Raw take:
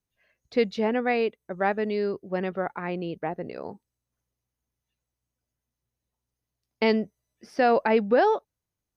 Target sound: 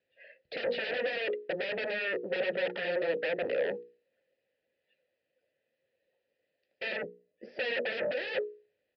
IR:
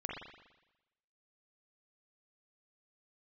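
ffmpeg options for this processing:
-filter_complex "[0:a]asettb=1/sr,asplit=3[a][b][c];[a]atrim=end=6.964[d];[b]atrim=start=6.96:end=7.92,asetpts=PTS-STARTPTS,afade=t=in:d=0.004:c=qsin,afade=t=out:st=0.956:d=0.004:c=qsin,equalizer=f=2.4k:w=0.31:g=-14[e];[c]atrim=start=7.916[f];[d][e]acrossfade=d=0.004:c1=hsin:c2=qsin[g];[g][f]acrossfade=d=0.004:c1=qsin:c2=hsin,bandreject=f=60:t=h:w=6,bandreject=f=120:t=h:w=6,bandreject=f=180:t=h:w=6,bandreject=f=240:t=h:w=6,bandreject=f=300:t=h:w=6,bandreject=f=360:t=h:w=6,bandreject=f=420:t=h:w=6,bandreject=f=480:t=h:w=6,acrossover=split=1000[h][i];[i]acrusher=bits=2:mode=log:mix=0:aa=0.000001[j];[h][j]amix=inputs=2:normalize=0,asoftclip=type=tanh:threshold=-21dB,asplit=2[k][l];[l]acrusher=bits=3:mix=0:aa=0.000001,volume=-9.5dB[m];[k][m]amix=inputs=2:normalize=0,aeval=exprs='0.141*sin(PI/2*8.91*val(0)/0.141)':c=same,asplit=3[n][o][p];[n]bandpass=f=530:t=q:w=8,volume=0dB[q];[o]bandpass=f=1.84k:t=q:w=8,volume=-6dB[r];[p]bandpass=f=2.48k:t=q:w=8,volume=-9dB[s];[q][r][s]amix=inputs=3:normalize=0,aresample=11025,aresample=44100"

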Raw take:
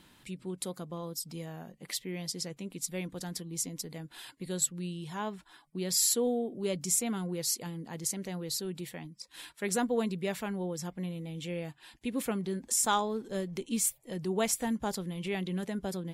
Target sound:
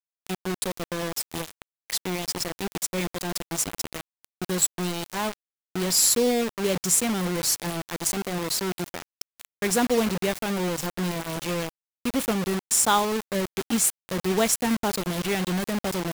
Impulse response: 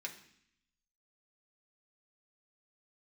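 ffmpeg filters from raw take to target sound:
-af "acrusher=bits=5:mix=0:aa=0.000001,volume=7dB"

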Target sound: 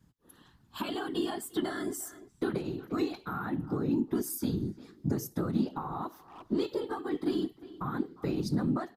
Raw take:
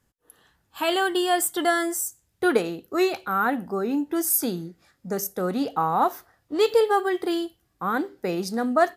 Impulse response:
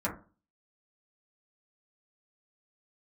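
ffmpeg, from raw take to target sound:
-filter_complex "[0:a]afftfilt=real='hypot(re,im)*cos(2*PI*random(0))':imag='hypot(re,im)*sin(2*PI*random(1))':win_size=512:overlap=0.75,equalizer=f=125:t=o:w=1:g=5,equalizer=f=1k:t=o:w=1:g=8,equalizer=f=4k:t=o:w=1:g=7,asplit=2[a][b];[b]adelay=350,highpass=300,lowpass=3.4k,asoftclip=type=hard:threshold=-18.5dB,volume=-24dB[c];[a][c]amix=inputs=2:normalize=0,acompressor=threshold=-37dB:ratio=4,lowshelf=f=420:t=q:w=1.5:g=9.5"

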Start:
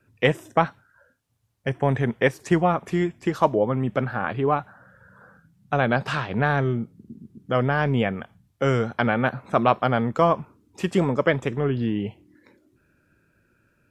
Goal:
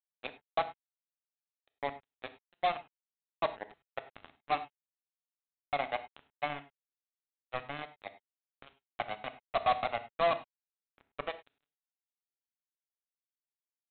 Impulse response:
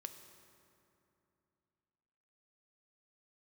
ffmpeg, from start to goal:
-filter_complex "[0:a]asplit=3[a][b][c];[a]bandpass=f=730:t=q:w=8,volume=0dB[d];[b]bandpass=f=1.09k:t=q:w=8,volume=-6dB[e];[c]bandpass=f=2.44k:t=q:w=8,volume=-9dB[f];[d][e][f]amix=inputs=3:normalize=0,aresample=8000,acrusher=bits=3:mix=0:aa=0.5,aresample=44100[g];[1:a]atrim=start_sample=2205,atrim=end_sample=3528,asetrate=32634,aresample=44100[h];[g][h]afir=irnorm=-1:irlink=0,volume=-1dB"

